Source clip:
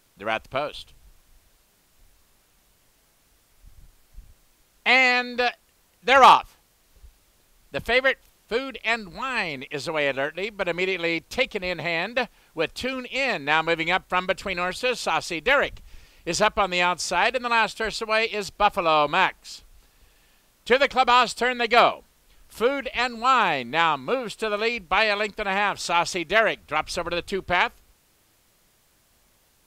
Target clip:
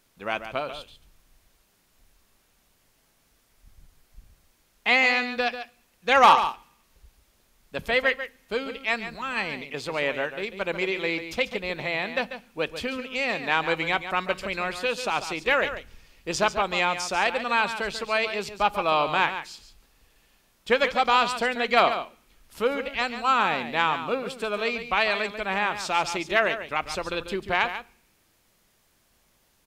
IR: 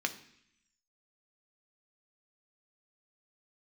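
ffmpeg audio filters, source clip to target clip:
-filter_complex "[0:a]aecho=1:1:142:0.299,asplit=2[a][b];[1:a]atrim=start_sample=2205,lowshelf=f=230:g=8[c];[b][c]afir=irnorm=-1:irlink=0,volume=-14.5dB[d];[a][d]amix=inputs=2:normalize=0,volume=-5dB"

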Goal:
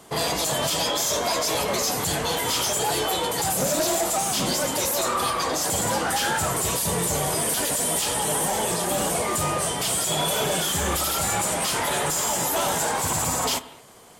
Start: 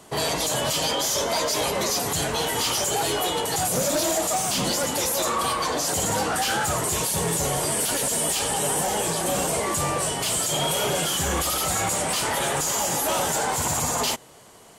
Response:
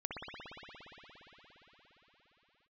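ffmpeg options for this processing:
-filter_complex "[0:a]asplit=2[a][b];[1:a]atrim=start_sample=2205,afade=t=out:st=0.26:d=0.01,atrim=end_sample=11907,adelay=33[c];[b][c]afir=irnorm=-1:irlink=0,volume=-14.5dB[d];[a][d]amix=inputs=2:normalize=0,asetrate=45938,aresample=44100"

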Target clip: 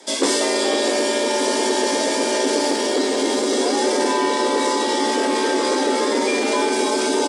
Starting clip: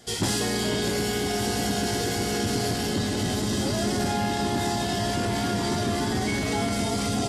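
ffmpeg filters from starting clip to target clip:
-filter_complex "[0:a]aresample=22050,aresample=44100,afreqshift=170,asettb=1/sr,asplit=3[a][b][c];[a]atrim=end=2.594[d];[b]atrim=start=2.59:end=3.57,asetpts=PTS-STARTPTS,afade=t=in:d=0.004:c=qsin,afade=t=out:st=0.976:d=0.004:c=qsin,aeval=exprs='sgn(val(0))*max(abs(val(0))-0.00126,0)':c=same[e];[c]atrim=start=3.566[f];[d][e]acrossfade=d=0.004:c1=hsin:c2=qsin[g];[g][f]acrossfade=d=0.004:c1=qsin:c2=hsin,volume=6.5dB"

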